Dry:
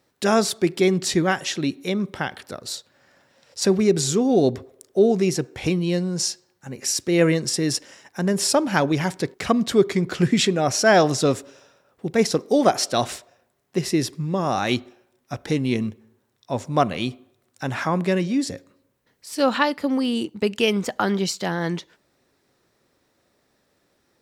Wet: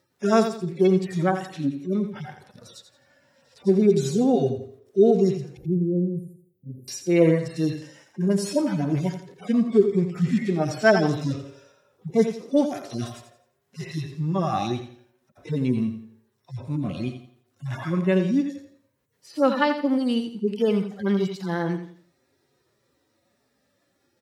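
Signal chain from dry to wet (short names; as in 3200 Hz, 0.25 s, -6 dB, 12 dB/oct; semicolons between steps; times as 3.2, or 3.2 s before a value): median-filter separation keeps harmonic; 5.57–6.88 inverse Chebyshev band-stop 1200–5900 Hz, stop band 60 dB; feedback echo 85 ms, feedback 32%, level -9.5 dB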